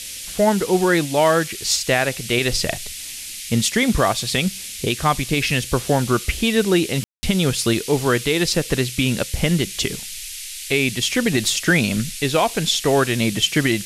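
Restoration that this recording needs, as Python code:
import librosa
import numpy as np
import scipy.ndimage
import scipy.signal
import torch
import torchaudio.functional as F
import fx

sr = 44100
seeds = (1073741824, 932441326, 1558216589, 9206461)

y = fx.fix_ambience(x, sr, seeds[0], print_start_s=10.19, print_end_s=10.69, start_s=7.04, end_s=7.23)
y = fx.noise_reduce(y, sr, print_start_s=10.19, print_end_s=10.69, reduce_db=30.0)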